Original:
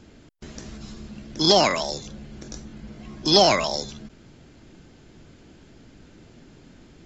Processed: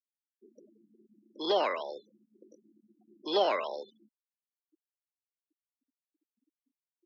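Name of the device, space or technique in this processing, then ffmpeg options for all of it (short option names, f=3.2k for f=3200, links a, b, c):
phone earpiece: -af "highpass=240,afftfilt=real='re*gte(hypot(re,im),0.0282)':imag='im*gte(hypot(re,im),0.0282)':win_size=1024:overlap=0.75,highpass=450,equalizer=f=480:t=q:w=4:g=4,equalizer=f=710:t=q:w=4:g=-5,equalizer=f=2.3k:t=q:w=4:g=-7,lowpass=f=3.1k:w=0.5412,lowpass=f=3.1k:w=1.3066,equalizer=f=420:w=1.5:g=2.5,volume=-7dB"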